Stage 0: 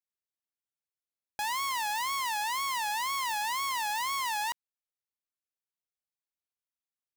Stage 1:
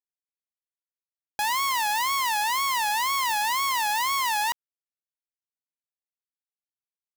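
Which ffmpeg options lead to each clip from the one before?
ffmpeg -i in.wav -af "acrusher=bits=7:mix=0:aa=0.000001,volume=6.5dB" out.wav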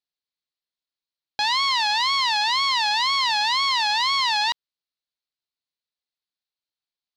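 ffmpeg -i in.wav -af "lowpass=frequency=4200:width_type=q:width=4,volume=1dB" out.wav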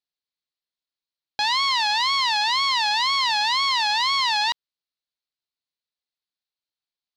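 ffmpeg -i in.wav -af anull out.wav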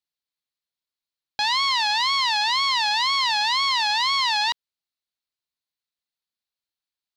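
ffmpeg -i in.wav -af "equalizer=frequency=420:width_type=o:width=1.2:gain=-3" out.wav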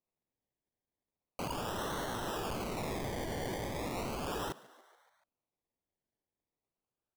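ffmpeg -i in.wav -filter_complex "[0:a]acrusher=samples=26:mix=1:aa=0.000001:lfo=1:lforange=15.6:lforate=0.37,aeval=exprs='(mod(25.1*val(0)+1,2)-1)/25.1':channel_layout=same,asplit=6[link_01][link_02][link_03][link_04][link_05][link_06];[link_02]adelay=143,afreqshift=110,volume=-21dB[link_07];[link_03]adelay=286,afreqshift=220,volume=-24.9dB[link_08];[link_04]adelay=429,afreqshift=330,volume=-28.8dB[link_09];[link_05]adelay=572,afreqshift=440,volume=-32.6dB[link_10];[link_06]adelay=715,afreqshift=550,volume=-36.5dB[link_11];[link_01][link_07][link_08][link_09][link_10][link_11]amix=inputs=6:normalize=0,volume=-4.5dB" out.wav

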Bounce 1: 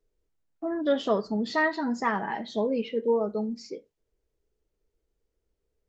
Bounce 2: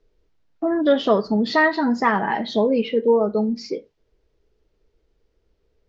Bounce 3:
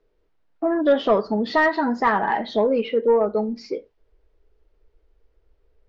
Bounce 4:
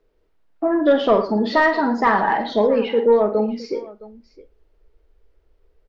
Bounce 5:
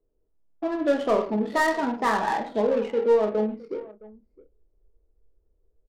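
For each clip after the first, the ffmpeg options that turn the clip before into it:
ffmpeg -i in.wav -filter_complex "[0:a]lowpass=frequency=5400:width=0.5412,lowpass=frequency=5400:width=1.3066,asplit=2[link_01][link_02];[link_02]acompressor=threshold=-34dB:ratio=6,volume=0.5dB[link_03];[link_01][link_03]amix=inputs=2:normalize=0,volume=5.5dB" out.wav
ffmpeg -i in.wav -filter_complex "[0:a]asubboost=boost=5:cutoff=71,asplit=2[link_01][link_02];[link_02]highpass=frequency=720:poles=1,volume=10dB,asoftclip=type=tanh:threshold=-6dB[link_03];[link_01][link_03]amix=inputs=2:normalize=0,lowpass=frequency=1200:poles=1,volume=-6dB" out.wav
ffmpeg -i in.wav -af "aecho=1:1:47|111|663:0.376|0.188|0.106,volume=2dB" out.wav
ffmpeg -i in.wav -filter_complex "[0:a]asplit=2[link_01][link_02];[link_02]adelay=28,volume=-7.5dB[link_03];[link_01][link_03]amix=inputs=2:normalize=0,adynamicsmooth=sensitivity=2:basefreq=660,volume=-7dB" out.wav

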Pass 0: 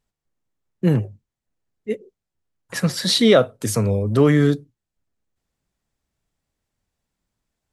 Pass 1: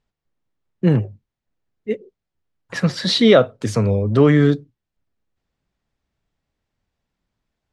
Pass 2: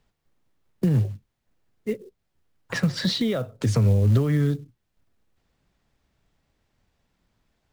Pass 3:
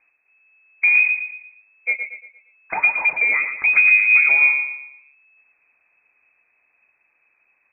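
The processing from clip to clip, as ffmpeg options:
ffmpeg -i in.wav -af "lowpass=4600,volume=2dB" out.wav
ffmpeg -i in.wav -filter_complex "[0:a]acompressor=threshold=-18dB:ratio=8,acrusher=bits=6:mode=log:mix=0:aa=0.000001,acrossover=split=150[link_01][link_02];[link_02]acompressor=threshold=-38dB:ratio=2.5[link_03];[link_01][link_03]amix=inputs=2:normalize=0,volume=7dB" out.wav
ffmpeg -i in.wav -filter_complex "[0:a]asplit=2[link_01][link_02];[link_02]asoftclip=type=tanh:threshold=-19dB,volume=-7dB[link_03];[link_01][link_03]amix=inputs=2:normalize=0,aecho=1:1:116|232|348|464|580:0.398|0.163|0.0669|0.0274|0.0112,lowpass=frequency=2200:width_type=q:width=0.5098,lowpass=frequency=2200:width_type=q:width=0.6013,lowpass=frequency=2200:width_type=q:width=0.9,lowpass=frequency=2200:width_type=q:width=2.563,afreqshift=-2600,volume=2.5dB" out.wav

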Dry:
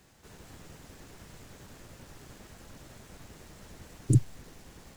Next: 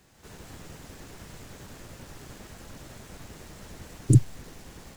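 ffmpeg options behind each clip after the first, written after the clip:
ffmpeg -i in.wav -af "dynaudnorm=framelen=110:gausssize=3:maxgain=5dB" out.wav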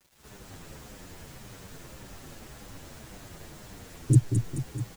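ffmpeg -i in.wav -filter_complex "[0:a]acrusher=bits=8:mix=0:aa=0.000001,aecho=1:1:216|432|648|864|1080|1296|1512|1728:0.501|0.296|0.174|0.103|0.0607|0.0358|0.0211|0.0125,asplit=2[link_01][link_02];[link_02]adelay=8.4,afreqshift=-1.8[link_03];[link_01][link_03]amix=inputs=2:normalize=1" out.wav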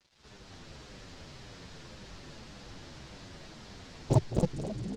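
ffmpeg -i in.wav -filter_complex "[0:a]lowpass=frequency=4700:width_type=q:width=1.8,asplit=9[link_01][link_02][link_03][link_04][link_05][link_06][link_07][link_08][link_09];[link_02]adelay=267,afreqshift=44,volume=-4.5dB[link_10];[link_03]adelay=534,afreqshift=88,volume=-9.5dB[link_11];[link_04]adelay=801,afreqshift=132,volume=-14.6dB[link_12];[link_05]adelay=1068,afreqshift=176,volume=-19.6dB[link_13];[link_06]adelay=1335,afreqshift=220,volume=-24.6dB[link_14];[link_07]adelay=1602,afreqshift=264,volume=-29.7dB[link_15];[link_08]adelay=1869,afreqshift=308,volume=-34.7dB[link_16];[link_09]adelay=2136,afreqshift=352,volume=-39.8dB[link_17];[link_01][link_10][link_11][link_12][link_13][link_14][link_15][link_16][link_17]amix=inputs=9:normalize=0,aeval=exprs='0.398*(cos(1*acos(clip(val(0)/0.398,-1,1)))-cos(1*PI/2))+0.126*(cos(7*acos(clip(val(0)/0.398,-1,1)))-cos(7*PI/2))':channel_layout=same,volume=-6dB" out.wav

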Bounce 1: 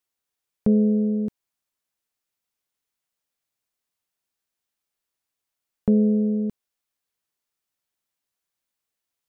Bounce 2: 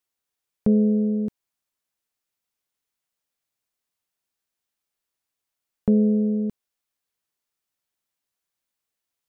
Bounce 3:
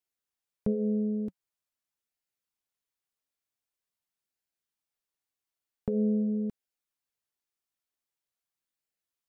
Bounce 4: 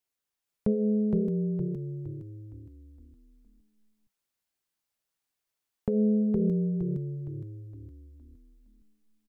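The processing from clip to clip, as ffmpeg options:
ffmpeg -i in.wav -af anull out.wav
ffmpeg -i in.wav -af "flanger=delay=0.4:depth=2.5:regen=-67:speed=0.45:shape=sinusoidal,volume=-2.5dB" out.wav
ffmpeg -i in.wav -filter_complex "[0:a]asplit=7[link_01][link_02][link_03][link_04][link_05][link_06][link_07];[link_02]adelay=464,afreqshift=-35,volume=-3dB[link_08];[link_03]adelay=928,afreqshift=-70,volume=-10.3dB[link_09];[link_04]adelay=1392,afreqshift=-105,volume=-17.7dB[link_10];[link_05]adelay=1856,afreqshift=-140,volume=-25dB[link_11];[link_06]adelay=2320,afreqshift=-175,volume=-32.3dB[link_12];[link_07]adelay=2784,afreqshift=-210,volume=-39.7dB[link_13];[link_01][link_08][link_09][link_10][link_11][link_12][link_13]amix=inputs=7:normalize=0,volume=2.5dB" out.wav

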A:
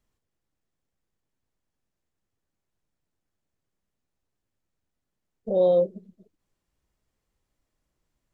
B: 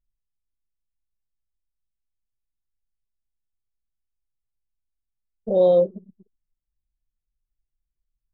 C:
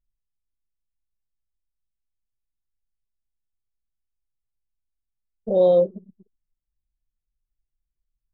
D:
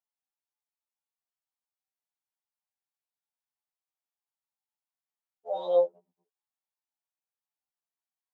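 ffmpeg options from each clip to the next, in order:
ffmpeg -i in.wav -af "anlmdn=0.0158,volume=3.5dB" out.wav
ffmpeg -i in.wav -af anull out.wav
ffmpeg -i in.wav -af "highpass=frequency=810:width_type=q:width=3.7,afftfilt=real='re*2*eq(mod(b,4),0)':imag='im*2*eq(mod(b,4),0)':win_size=2048:overlap=0.75,volume=-2.5dB" out.wav

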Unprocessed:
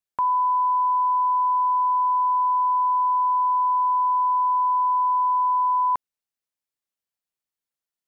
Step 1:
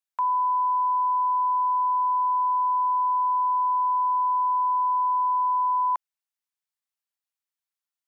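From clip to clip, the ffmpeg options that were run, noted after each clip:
ffmpeg -i in.wav -af "highpass=frequency=740:width=0.5412,highpass=frequency=740:width=1.3066,volume=-2dB" out.wav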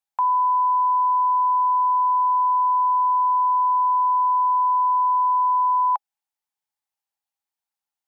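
ffmpeg -i in.wav -af "equalizer=frequency=820:width=4.4:gain=14" out.wav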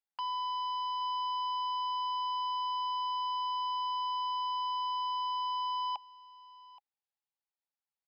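ffmpeg -i in.wav -af "aresample=11025,asoftclip=type=hard:threshold=-25dB,aresample=44100,aecho=1:1:825:0.106,volume=-9dB" out.wav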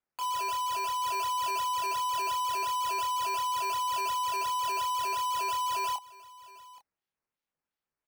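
ffmpeg -i in.wav -filter_complex "[0:a]acrusher=samples=9:mix=1:aa=0.000001:lfo=1:lforange=9:lforate=2.8,asplit=2[link_01][link_02];[link_02]adelay=26,volume=-5dB[link_03];[link_01][link_03]amix=inputs=2:normalize=0" out.wav

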